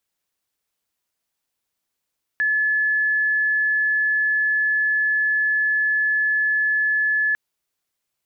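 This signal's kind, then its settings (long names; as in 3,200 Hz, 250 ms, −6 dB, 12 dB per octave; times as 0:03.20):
tone sine 1,720 Hz −17 dBFS 4.95 s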